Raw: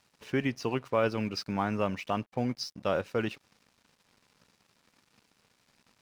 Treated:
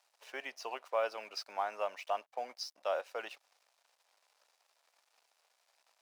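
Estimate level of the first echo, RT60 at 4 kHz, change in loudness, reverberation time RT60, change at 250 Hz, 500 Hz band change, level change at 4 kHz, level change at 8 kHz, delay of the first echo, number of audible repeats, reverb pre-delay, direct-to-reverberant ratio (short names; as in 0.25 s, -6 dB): none, none, -7.0 dB, none, -28.0 dB, -6.5 dB, -5.0 dB, -4.5 dB, none, none, none, none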